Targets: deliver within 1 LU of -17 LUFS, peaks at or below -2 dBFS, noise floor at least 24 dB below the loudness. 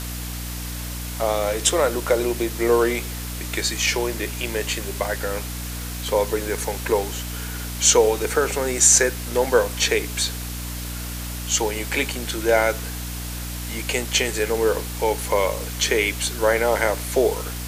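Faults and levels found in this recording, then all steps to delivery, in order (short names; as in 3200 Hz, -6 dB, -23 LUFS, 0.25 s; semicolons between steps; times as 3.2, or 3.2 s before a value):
hum 60 Hz; harmonics up to 300 Hz; hum level -29 dBFS; noise floor -31 dBFS; noise floor target -46 dBFS; loudness -22.0 LUFS; peak -2.0 dBFS; loudness target -17.0 LUFS
-> notches 60/120/180/240/300 Hz; denoiser 15 dB, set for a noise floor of -31 dBFS; gain +5 dB; limiter -2 dBFS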